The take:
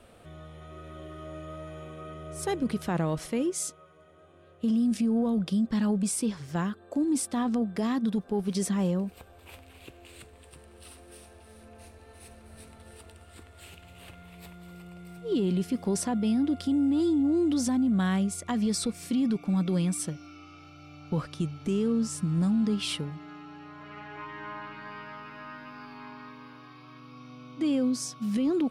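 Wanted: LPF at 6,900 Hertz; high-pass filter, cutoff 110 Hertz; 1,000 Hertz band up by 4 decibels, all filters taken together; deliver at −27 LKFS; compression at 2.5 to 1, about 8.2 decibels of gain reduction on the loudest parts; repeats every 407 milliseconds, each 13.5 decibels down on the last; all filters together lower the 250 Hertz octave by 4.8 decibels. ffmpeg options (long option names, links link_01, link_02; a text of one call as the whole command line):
ffmpeg -i in.wav -af "highpass=110,lowpass=6900,equalizer=frequency=250:width_type=o:gain=-6,equalizer=frequency=1000:width_type=o:gain=5.5,acompressor=threshold=-38dB:ratio=2.5,aecho=1:1:407|814:0.211|0.0444,volume=13dB" out.wav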